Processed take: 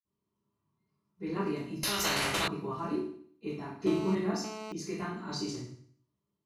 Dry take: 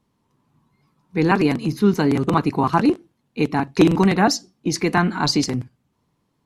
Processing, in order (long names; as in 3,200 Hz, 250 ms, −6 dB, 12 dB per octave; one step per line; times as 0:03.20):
convolution reverb RT60 0.55 s, pre-delay 46 ms
0:01.83–0:02.48: every bin compressed towards the loudest bin 10 to 1
0:03.87–0:04.72: phone interference −35 dBFS
level −6.5 dB